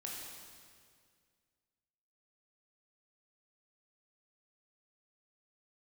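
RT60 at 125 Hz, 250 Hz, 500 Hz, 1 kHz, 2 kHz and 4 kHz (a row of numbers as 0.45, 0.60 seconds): 2.4, 2.2, 2.1, 1.9, 1.9, 1.8 seconds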